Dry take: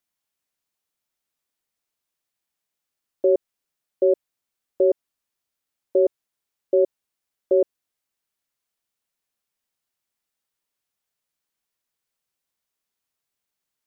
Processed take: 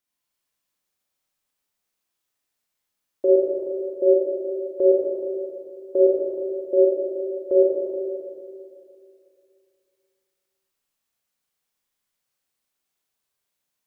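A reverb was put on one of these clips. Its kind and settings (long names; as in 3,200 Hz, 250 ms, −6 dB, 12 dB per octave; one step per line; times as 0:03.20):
four-comb reverb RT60 2.6 s, combs from 30 ms, DRR −5 dB
level −3 dB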